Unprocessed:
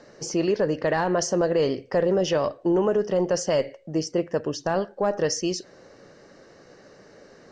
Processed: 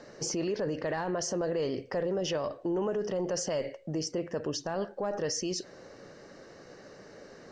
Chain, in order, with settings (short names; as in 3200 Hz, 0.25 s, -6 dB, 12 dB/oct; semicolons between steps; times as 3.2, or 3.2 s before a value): limiter -24 dBFS, peak gain reduction 10.5 dB